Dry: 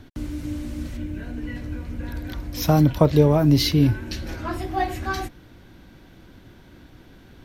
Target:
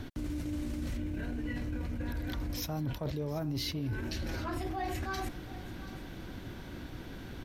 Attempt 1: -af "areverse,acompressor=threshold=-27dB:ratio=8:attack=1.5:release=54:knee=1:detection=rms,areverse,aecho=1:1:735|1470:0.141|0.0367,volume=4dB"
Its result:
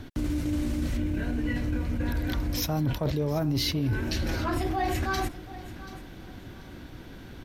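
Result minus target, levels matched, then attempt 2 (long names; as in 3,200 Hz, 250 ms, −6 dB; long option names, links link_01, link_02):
downward compressor: peak gain reduction −8 dB
-af "areverse,acompressor=threshold=-36dB:ratio=8:attack=1.5:release=54:knee=1:detection=rms,areverse,aecho=1:1:735|1470:0.141|0.0367,volume=4dB"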